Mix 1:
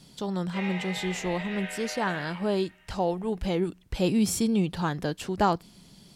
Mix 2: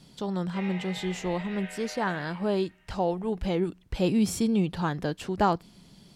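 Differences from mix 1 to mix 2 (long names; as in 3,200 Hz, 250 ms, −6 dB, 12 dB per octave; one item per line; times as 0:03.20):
background −4.0 dB
master: add high-shelf EQ 4,800 Hz −6 dB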